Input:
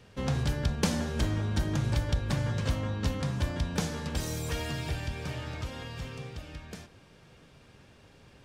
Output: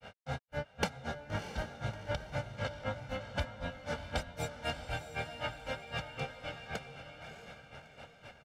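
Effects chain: tone controls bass -13 dB, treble -11 dB; comb 1.4 ms, depth 69%; compressor 5:1, threshold -41 dBFS, peak gain reduction 13.5 dB; grains 0.139 s, grains 3.9/s, spray 27 ms, pitch spread up and down by 0 st; diffused feedback echo 0.635 s, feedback 42%, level -8 dB; gain +11 dB

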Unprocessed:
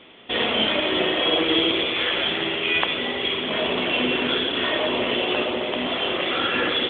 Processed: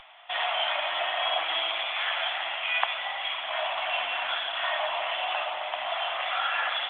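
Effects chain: elliptic high-pass 700 Hz, stop band 40 dB; upward compressor, threshold -43 dBFS; tilt -4 dB/oct

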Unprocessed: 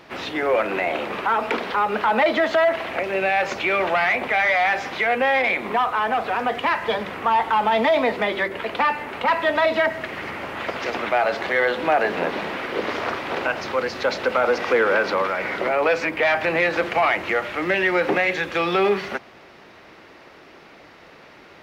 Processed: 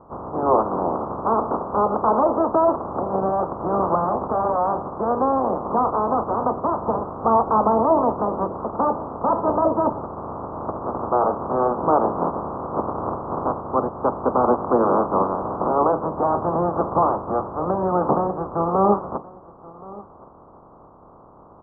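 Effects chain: spectral limiter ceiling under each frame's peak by 16 dB; steep low-pass 1200 Hz 72 dB/oct; on a send: echo 1.074 s -21 dB; on the sum: gain +4 dB

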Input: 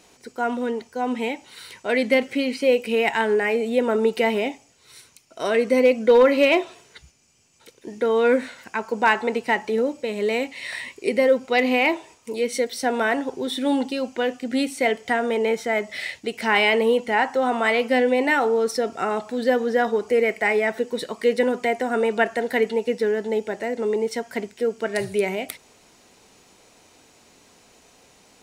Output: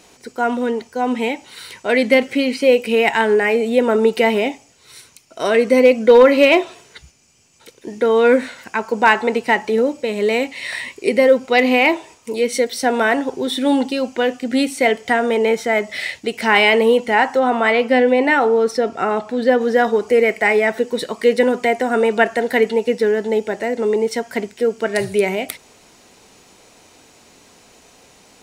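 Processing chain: 17.39–19.61 LPF 3500 Hz 6 dB/oct; gain +5.5 dB

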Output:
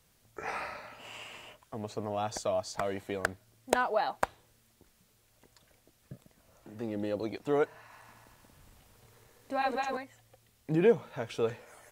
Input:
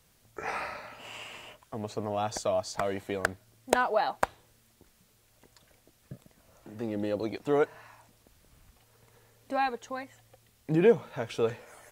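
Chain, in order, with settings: 7.79–9.97 regenerating reverse delay 0.114 s, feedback 68%, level -1.5 dB; gain -2.5 dB

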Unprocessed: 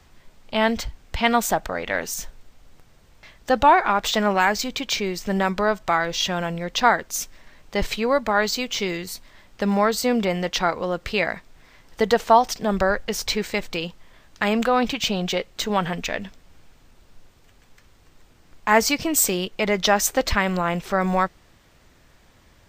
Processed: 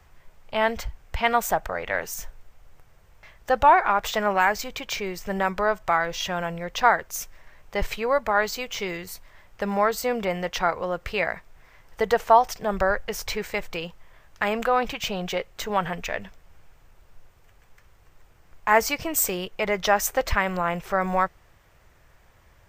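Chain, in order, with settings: ten-band EQ 250 Hz -11 dB, 4000 Hz -8 dB, 8000 Hz -4 dB

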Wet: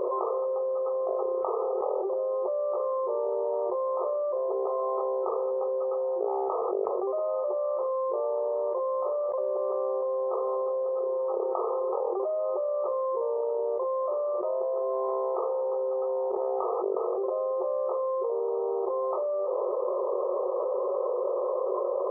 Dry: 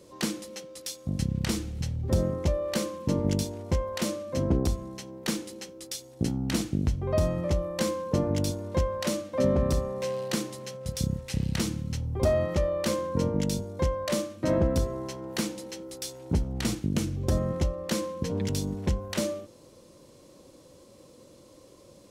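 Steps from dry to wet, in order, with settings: FFT band-pass 360–1300 Hz; fast leveller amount 100%; gain -6.5 dB

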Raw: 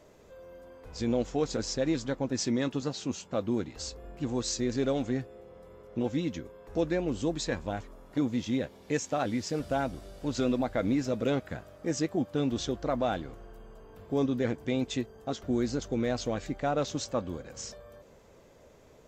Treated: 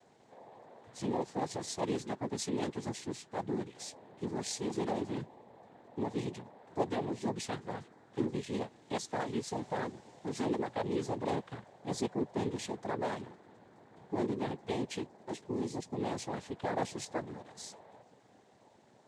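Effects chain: 15.23–15.98 bell 1200 Hz -3.5 dB -> -10 dB 1.9 oct; noise vocoder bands 6; gain -5.5 dB

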